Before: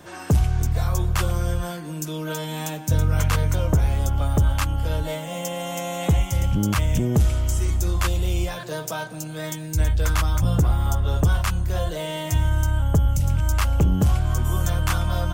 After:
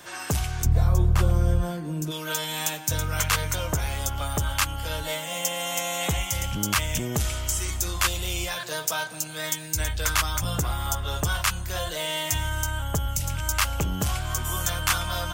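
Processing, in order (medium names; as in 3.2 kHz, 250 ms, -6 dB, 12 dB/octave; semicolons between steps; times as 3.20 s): tilt shelf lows -7.5 dB, about 770 Hz, from 0.64 s lows +4 dB, from 2.10 s lows -8 dB; trim -1.5 dB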